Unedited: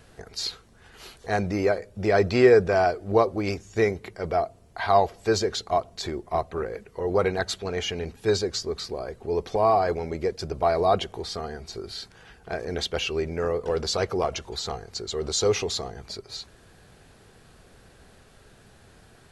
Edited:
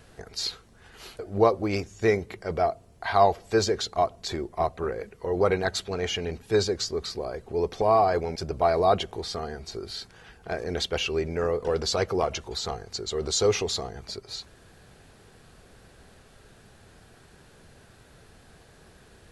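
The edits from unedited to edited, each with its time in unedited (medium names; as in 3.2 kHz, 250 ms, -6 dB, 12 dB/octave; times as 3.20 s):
1.19–2.93 s: delete
10.10–10.37 s: delete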